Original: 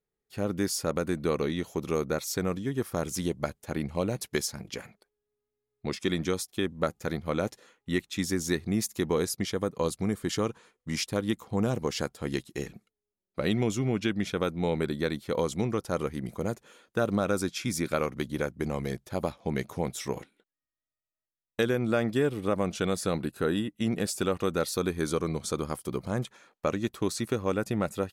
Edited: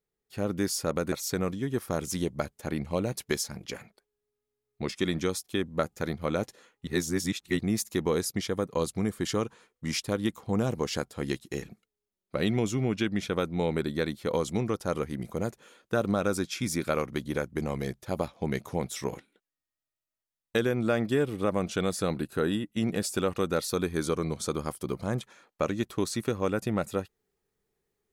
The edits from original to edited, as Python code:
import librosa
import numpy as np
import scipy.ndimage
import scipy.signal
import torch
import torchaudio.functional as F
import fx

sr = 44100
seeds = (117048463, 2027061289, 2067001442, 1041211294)

y = fx.edit(x, sr, fx.cut(start_s=1.12, length_s=1.04),
    fx.reverse_span(start_s=7.91, length_s=0.72), tone=tone)